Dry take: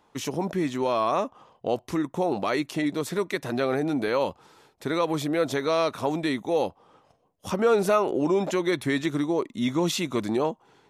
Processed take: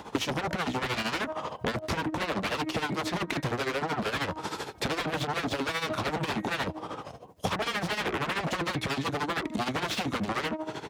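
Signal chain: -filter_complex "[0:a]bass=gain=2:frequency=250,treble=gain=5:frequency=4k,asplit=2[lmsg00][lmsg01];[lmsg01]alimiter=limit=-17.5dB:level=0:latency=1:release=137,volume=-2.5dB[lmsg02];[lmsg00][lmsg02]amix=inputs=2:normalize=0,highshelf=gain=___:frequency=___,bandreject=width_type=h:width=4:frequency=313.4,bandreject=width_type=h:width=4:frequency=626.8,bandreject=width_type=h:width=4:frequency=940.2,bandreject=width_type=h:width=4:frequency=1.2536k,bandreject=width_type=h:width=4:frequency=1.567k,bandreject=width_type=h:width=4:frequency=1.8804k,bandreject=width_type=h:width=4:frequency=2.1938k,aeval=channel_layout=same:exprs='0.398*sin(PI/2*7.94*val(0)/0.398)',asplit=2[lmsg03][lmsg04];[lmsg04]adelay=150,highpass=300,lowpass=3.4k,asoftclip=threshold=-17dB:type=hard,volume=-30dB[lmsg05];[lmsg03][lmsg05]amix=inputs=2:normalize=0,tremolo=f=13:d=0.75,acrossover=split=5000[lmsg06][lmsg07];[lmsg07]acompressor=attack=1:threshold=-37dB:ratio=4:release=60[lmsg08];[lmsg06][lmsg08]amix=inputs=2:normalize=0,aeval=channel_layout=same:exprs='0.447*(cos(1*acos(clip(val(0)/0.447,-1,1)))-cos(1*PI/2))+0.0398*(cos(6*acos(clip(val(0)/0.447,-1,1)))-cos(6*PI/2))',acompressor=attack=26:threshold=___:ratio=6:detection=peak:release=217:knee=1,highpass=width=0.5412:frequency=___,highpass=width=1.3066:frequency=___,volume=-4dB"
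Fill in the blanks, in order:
-9.5, 5.7k, -26dB, 49, 49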